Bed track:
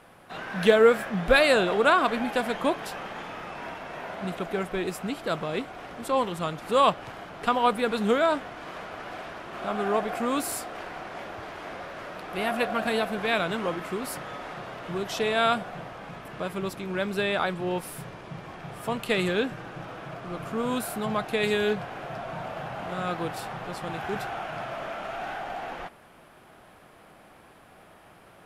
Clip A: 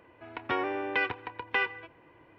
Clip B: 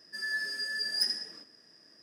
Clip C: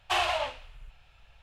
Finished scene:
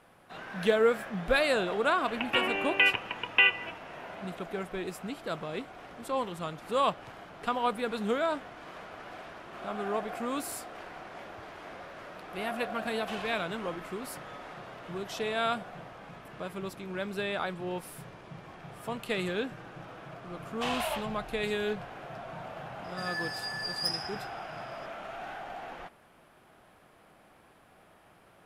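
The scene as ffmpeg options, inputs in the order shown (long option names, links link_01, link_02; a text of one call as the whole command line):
ffmpeg -i bed.wav -i cue0.wav -i cue1.wav -i cue2.wav -filter_complex "[3:a]asplit=2[link_01][link_02];[0:a]volume=-6.5dB[link_03];[1:a]lowpass=frequency=2800:width_type=q:width=12[link_04];[link_02]dynaudnorm=framelen=220:gausssize=3:maxgain=6dB[link_05];[link_04]atrim=end=2.38,asetpts=PTS-STARTPTS,volume=-2.5dB,afade=type=in:duration=0.004:curve=hsin,afade=type=out:start_time=2.376:duration=0.004:curve=hsin,adelay=1840[link_06];[link_01]atrim=end=1.42,asetpts=PTS-STARTPTS,volume=-14.5dB,afade=type=in:duration=0.004:curve=hsin,afade=type=out:start_time=1.416:duration=0.004:curve=hsin,adelay=12970[link_07];[link_05]atrim=end=1.42,asetpts=PTS-STARTPTS,volume=-8dB,afade=type=in:duration=0.004:curve=hsin,afade=type=out:start_time=1.416:duration=0.004:curve=hsin,adelay=20510[link_08];[2:a]atrim=end=2.02,asetpts=PTS-STARTPTS,volume=-3dB,afade=type=in:duration=0.004:curve=hsin,afade=type=out:start_time=2.016:duration=0.004:curve=hsin,adelay=22840[link_09];[link_03][link_06][link_07][link_08][link_09]amix=inputs=5:normalize=0" out.wav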